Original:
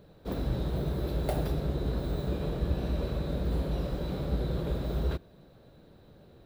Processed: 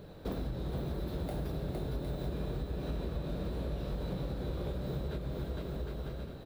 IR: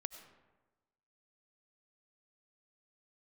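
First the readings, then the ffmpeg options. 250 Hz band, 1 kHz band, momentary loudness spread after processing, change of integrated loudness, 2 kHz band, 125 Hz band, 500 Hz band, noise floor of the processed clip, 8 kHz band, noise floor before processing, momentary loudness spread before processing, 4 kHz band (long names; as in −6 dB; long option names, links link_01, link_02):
−4.5 dB, −5.0 dB, 2 LU, −5.5 dB, −4.0 dB, −5.0 dB, −4.5 dB, −47 dBFS, −5.0 dB, −56 dBFS, 3 LU, −4.5 dB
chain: -filter_complex "[0:a]asplit=2[link_01][link_02];[1:a]atrim=start_sample=2205,adelay=22[link_03];[link_02][link_03]afir=irnorm=-1:irlink=0,volume=-7.5dB[link_04];[link_01][link_04]amix=inputs=2:normalize=0,alimiter=limit=-21.5dB:level=0:latency=1:release=292,asplit=2[link_05][link_06];[link_06]aecho=0:1:460|759|953.4|1080|1162:0.631|0.398|0.251|0.158|0.1[link_07];[link_05][link_07]amix=inputs=2:normalize=0,acompressor=threshold=-40dB:ratio=5,volume=5.5dB"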